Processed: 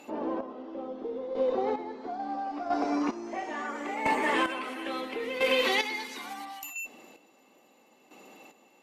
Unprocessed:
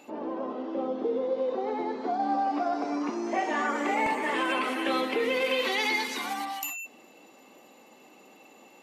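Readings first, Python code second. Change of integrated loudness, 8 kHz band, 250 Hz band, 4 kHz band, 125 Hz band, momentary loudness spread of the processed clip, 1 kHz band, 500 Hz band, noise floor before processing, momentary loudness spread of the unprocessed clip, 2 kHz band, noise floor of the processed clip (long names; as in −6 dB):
−2.0 dB, −3.5 dB, −2.5 dB, −1.0 dB, can't be measured, 12 LU, −3.0 dB, −1.5 dB, −55 dBFS, 8 LU, −2.0 dB, −62 dBFS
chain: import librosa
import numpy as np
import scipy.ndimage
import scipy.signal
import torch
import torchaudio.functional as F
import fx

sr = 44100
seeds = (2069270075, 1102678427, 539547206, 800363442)

y = fx.cheby_harmonics(x, sr, harmonics=(6,), levels_db=(-35,), full_scale_db=-15.5)
y = fx.chopper(y, sr, hz=0.74, depth_pct=65, duty_pct=30)
y = y * librosa.db_to_amplitude(2.0)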